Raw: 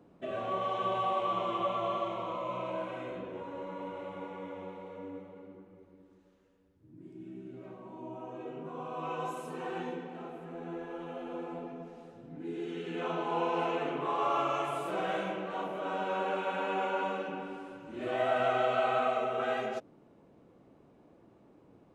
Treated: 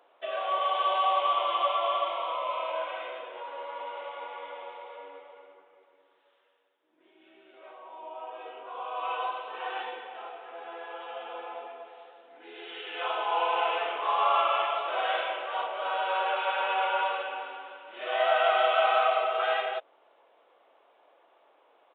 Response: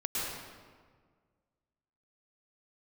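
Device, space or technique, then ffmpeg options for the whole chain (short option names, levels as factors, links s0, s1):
musical greeting card: -af "aresample=8000,aresample=44100,highpass=f=610:w=0.5412,highpass=f=610:w=1.3066,equalizer=f=3400:t=o:w=0.56:g=6,volume=2.11"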